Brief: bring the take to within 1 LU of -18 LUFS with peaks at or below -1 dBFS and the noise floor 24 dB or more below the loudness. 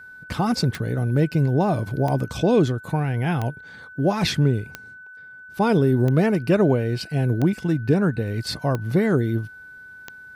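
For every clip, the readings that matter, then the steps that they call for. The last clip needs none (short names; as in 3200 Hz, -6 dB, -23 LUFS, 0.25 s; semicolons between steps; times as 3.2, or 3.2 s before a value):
clicks 8; steady tone 1500 Hz; tone level -40 dBFS; loudness -22.0 LUFS; peak -7.0 dBFS; loudness target -18.0 LUFS
-> de-click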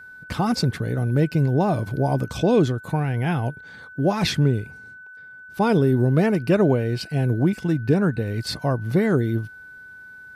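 clicks 0; steady tone 1500 Hz; tone level -40 dBFS
-> notch 1500 Hz, Q 30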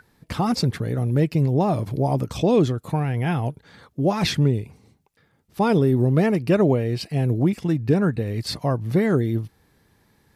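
steady tone none; loudness -22.0 LUFS; peak -7.0 dBFS; loudness target -18.0 LUFS
-> gain +4 dB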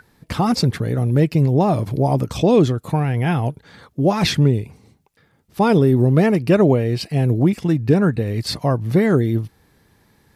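loudness -18.0 LUFS; peak -3.0 dBFS; noise floor -59 dBFS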